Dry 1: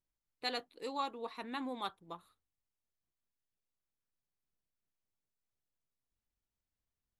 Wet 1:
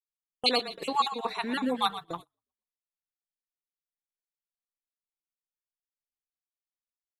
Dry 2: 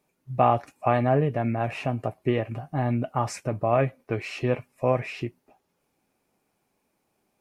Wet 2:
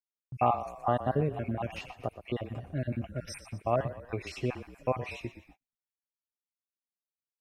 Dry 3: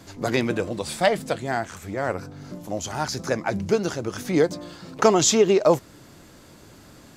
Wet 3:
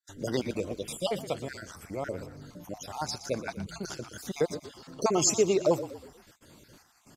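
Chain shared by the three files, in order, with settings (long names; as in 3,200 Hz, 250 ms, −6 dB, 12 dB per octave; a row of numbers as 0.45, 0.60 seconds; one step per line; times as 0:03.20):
time-frequency cells dropped at random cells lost 43%
high-shelf EQ 2,900 Hz +4 dB
echo with shifted repeats 120 ms, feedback 43%, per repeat −31 Hz, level −13 dB
noise gate −51 dBFS, range −35 dB
dynamic equaliser 1,800 Hz, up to −7 dB, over −48 dBFS, Q 3.2
normalise the peak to −12 dBFS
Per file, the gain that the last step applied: +12.5, −5.0, −6.5 decibels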